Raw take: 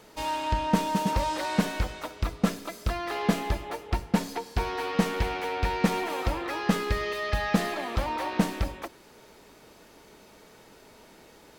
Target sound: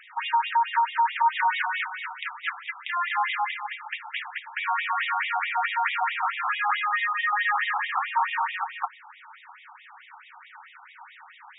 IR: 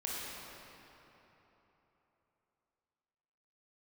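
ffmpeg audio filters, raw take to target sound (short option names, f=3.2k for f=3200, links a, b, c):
-filter_complex "[0:a]asplit=2[a][b];[b]highpass=f=720:p=1,volume=21dB,asoftclip=type=tanh:threshold=-8.5dB[c];[a][c]amix=inputs=2:normalize=0,lowpass=f=2k:p=1,volume=-6dB,afftfilt=real='re*between(b*sr/1024,990*pow(2700/990,0.5+0.5*sin(2*PI*4.6*pts/sr))/1.41,990*pow(2700/990,0.5+0.5*sin(2*PI*4.6*pts/sr))*1.41)':imag='im*between(b*sr/1024,990*pow(2700/990,0.5+0.5*sin(2*PI*4.6*pts/sr))/1.41,990*pow(2700/990,0.5+0.5*sin(2*PI*4.6*pts/sr))*1.41)':win_size=1024:overlap=0.75,volume=1.5dB"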